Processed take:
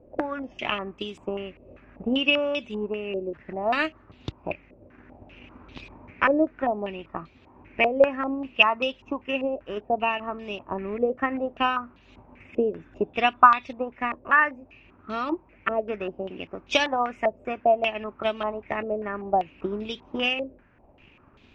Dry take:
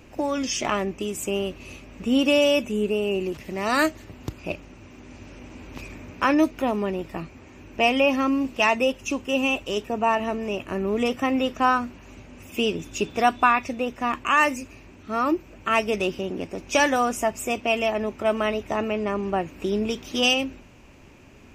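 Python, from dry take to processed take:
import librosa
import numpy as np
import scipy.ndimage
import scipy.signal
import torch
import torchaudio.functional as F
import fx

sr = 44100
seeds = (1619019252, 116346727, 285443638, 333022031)

y = fx.transient(x, sr, attack_db=7, sustain_db=-3)
y = fx.filter_held_lowpass(y, sr, hz=5.1, low_hz=560.0, high_hz=3700.0)
y = F.gain(torch.from_numpy(y), -8.5).numpy()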